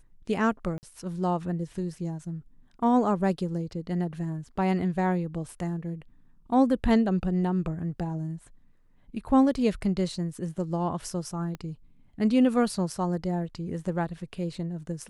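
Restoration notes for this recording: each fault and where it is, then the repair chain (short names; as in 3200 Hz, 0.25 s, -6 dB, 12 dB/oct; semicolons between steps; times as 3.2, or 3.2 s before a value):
0.78–0.83 gap 49 ms
11.55 pop -24 dBFS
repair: de-click; interpolate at 0.78, 49 ms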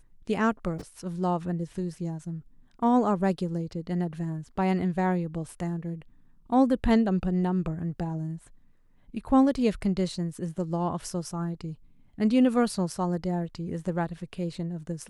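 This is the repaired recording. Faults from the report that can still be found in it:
11.55 pop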